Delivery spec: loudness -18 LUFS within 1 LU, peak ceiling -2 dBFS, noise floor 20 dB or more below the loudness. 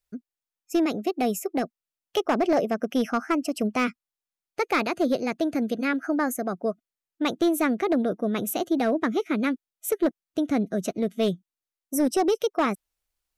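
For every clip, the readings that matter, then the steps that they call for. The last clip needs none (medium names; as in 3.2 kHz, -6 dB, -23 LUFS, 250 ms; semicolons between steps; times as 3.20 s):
clipped samples 0.7%; clipping level -16.0 dBFS; loudness -26.0 LUFS; peak level -16.0 dBFS; loudness target -18.0 LUFS
-> clip repair -16 dBFS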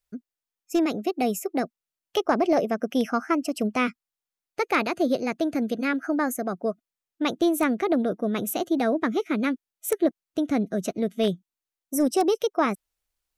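clipped samples 0.0%; loudness -26.0 LUFS; peak level -8.0 dBFS; loudness target -18.0 LUFS
-> trim +8 dB; peak limiter -2 dBFS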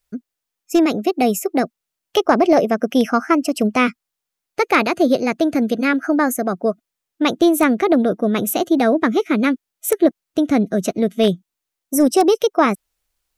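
loudness -18.0 LUFS; peak level -2.0 dBFS; noise floor -82 dBFS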